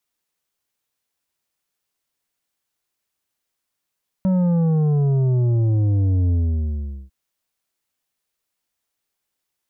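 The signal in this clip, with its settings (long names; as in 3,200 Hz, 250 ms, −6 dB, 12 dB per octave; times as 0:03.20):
bass drop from 190 Hz, over 2.85 s, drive 8 dB, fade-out 0.79 s, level −16 dB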